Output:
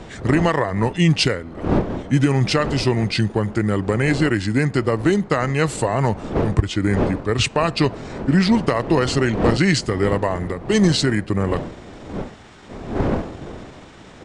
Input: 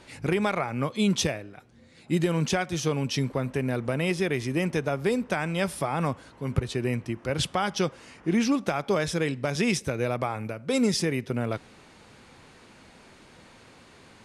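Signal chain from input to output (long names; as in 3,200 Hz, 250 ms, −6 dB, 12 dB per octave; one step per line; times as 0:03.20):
wind on the microphone 530 Hz −36 dBFS
pitch shifter −3.5 semitones
level +8 dB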